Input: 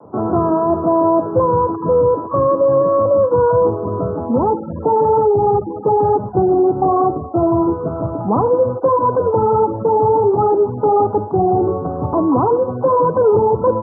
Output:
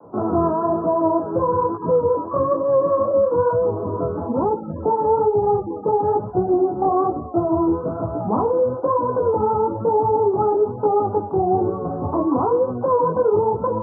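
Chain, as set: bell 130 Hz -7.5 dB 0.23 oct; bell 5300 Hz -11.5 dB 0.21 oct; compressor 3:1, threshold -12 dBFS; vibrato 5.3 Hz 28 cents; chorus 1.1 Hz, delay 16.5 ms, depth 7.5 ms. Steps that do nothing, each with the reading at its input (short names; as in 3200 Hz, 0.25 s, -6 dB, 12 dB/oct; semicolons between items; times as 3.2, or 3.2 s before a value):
bell 5300 Hz: input band ends at 1400 Hz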